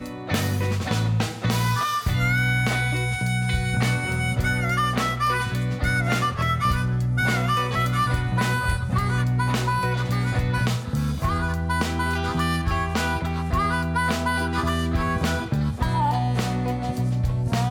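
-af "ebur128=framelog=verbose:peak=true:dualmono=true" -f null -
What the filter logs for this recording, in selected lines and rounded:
Integrated loudness:
  I:         -20.5 LUFS
  Threshold: -30.5 LUFS
Loudness range:
  LRA:         1.5 LU
  Threshold: -40.4 LUFS
  LRA low:   -21.2 LUFS
  LRA high:  -19.7 LUFS
True peak:
  Peak:       -9.2 dBFS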